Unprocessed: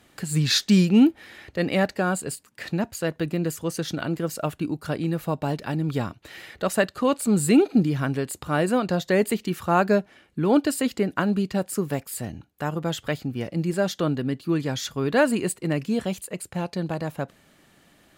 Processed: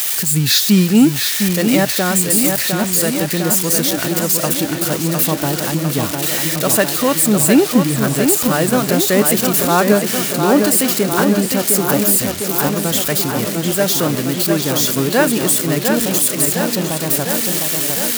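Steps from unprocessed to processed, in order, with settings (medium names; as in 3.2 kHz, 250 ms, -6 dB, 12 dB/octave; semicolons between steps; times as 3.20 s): zero-crossing glitches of -16 dBFS; tape echo 705 ms, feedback 78%, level -4 dB, low-pass 4.2 kHz; trim +5.5 dB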